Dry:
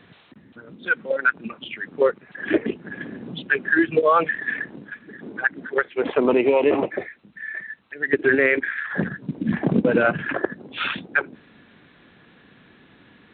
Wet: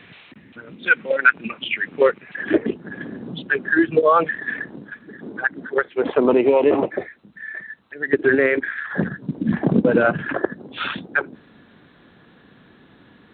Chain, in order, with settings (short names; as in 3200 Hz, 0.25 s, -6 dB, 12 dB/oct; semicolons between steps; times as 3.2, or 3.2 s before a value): bell 2400 Hz +9.5 dB 0.86 oct, from 2.43 s -6.5 dB; gain +2.5 dB